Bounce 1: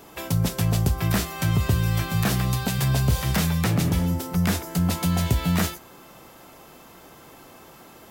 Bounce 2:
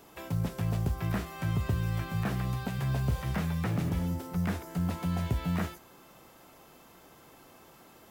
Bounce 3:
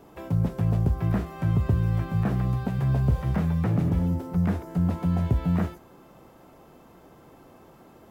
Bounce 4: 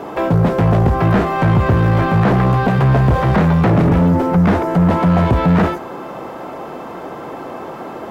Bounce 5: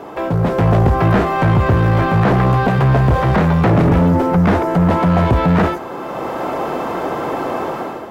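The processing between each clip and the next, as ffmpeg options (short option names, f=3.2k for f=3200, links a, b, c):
-filter_complex "[0:a]acrossover=split=2500[a][b];[b]acompressor=threshold=-41dB:ratio=4:attack=1:release=60[c];[a][c]amix=inputs=2:normalize=0,acrusher=bits=8:mode=log:mix=0:aa=0.000001,volume=-8dB"
-af "tiltshelf=f=1.4k:g=7"
-filter_complex "[0:a]asplit=2[a][b];[b]highpass=f=720:p=1,volume=27dB,asoftclip=type=tanh:threshold=-12.5dB[c];[a][c]amix=inputs=2:normalize=0,lowpass=f=1.1k:p=1,volume=-6dB,volume=8.5dB"
-af "equalizer=f=190:w=1.5:g=-2.5,dynaudnorm=f=190:g=5:m=12dB,volume=-3.5dB"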